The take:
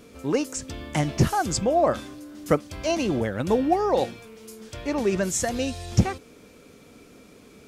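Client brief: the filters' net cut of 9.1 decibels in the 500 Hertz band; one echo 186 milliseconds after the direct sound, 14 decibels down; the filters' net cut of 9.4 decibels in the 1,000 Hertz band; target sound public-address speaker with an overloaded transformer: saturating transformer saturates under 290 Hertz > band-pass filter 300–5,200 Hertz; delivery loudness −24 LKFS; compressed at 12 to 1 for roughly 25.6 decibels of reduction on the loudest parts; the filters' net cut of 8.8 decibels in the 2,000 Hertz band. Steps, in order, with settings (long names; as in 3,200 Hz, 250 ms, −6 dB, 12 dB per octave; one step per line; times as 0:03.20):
parametric band 500 Hz −8 dB
parametric band 1,000 Hz −8 dB
parametric band 2,000 Hz −8.5 dB
downward compressor 12 to 1, threshold −40 dBFS
single-tap delay 186 ms −14 dB
saturating transformer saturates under 290 Hz
band-pass filter 300–5,200 Hz
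level +25 dB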